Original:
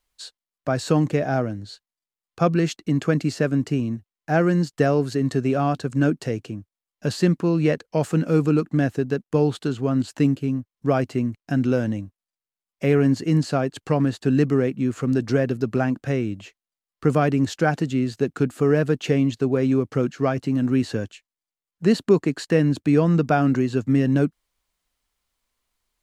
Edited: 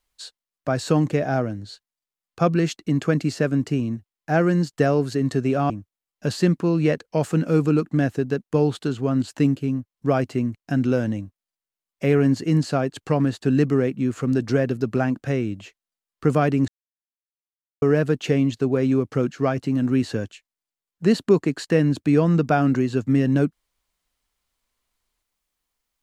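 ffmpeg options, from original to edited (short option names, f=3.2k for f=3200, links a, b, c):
-filter_complex "[0:a]asplit=4[a][b][c][d];[a]atrim=end=5.702[e];[b]atrim=start=6.498:end=17.48,asetpts=PTS-STARTPTS,afade=t=out:st=10.978:d=0.004:c=hsin[f];[c]atrim=start=17.48:end=18.62,asetpts=PTS-STARTPTS,volume=0[g];[d]atrim=start=18.62,asetpts=PTS-STARTPTS,afade=t=in:d=0.004:c=hsin[h];[f][g][h]concat=n=3:v=0:a=1[i];[e][i]acrossfade=d=0.004:c1=hsin:c2=hsin"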